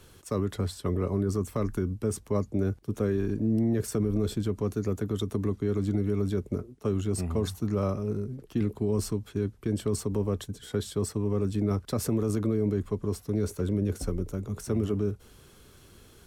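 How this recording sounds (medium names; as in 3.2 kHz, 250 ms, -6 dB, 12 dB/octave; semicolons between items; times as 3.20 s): noise floor -55 dBFS; spectral tilt -8.0 dB/octave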